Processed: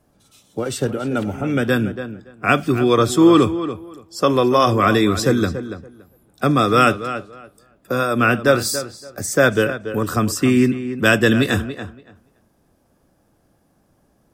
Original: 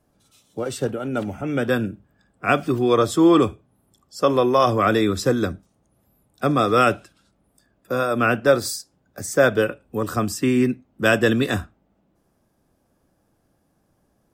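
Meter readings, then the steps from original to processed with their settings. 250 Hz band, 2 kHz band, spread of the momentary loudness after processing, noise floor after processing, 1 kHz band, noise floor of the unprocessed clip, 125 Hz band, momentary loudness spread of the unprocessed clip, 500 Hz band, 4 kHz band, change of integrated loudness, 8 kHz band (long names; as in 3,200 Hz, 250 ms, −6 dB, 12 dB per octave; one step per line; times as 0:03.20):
+4.0 dB, +4.0 dB, 15 LU, −61 dBFS, +3.0 dB, −67 dBFS, +5.0 dB, 11 LU, +1.5 dB, +5.0 dB, +3.0 dB, +5.0 dB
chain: feedback echo with a low-pass in the loop 284 ms, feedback 16%, low-pass 4,200 Hz, level −12.5 dB
dynamic equaliser 640 Hz, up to −5 dB, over −29 dBFS, Q 0.9
level +5 dB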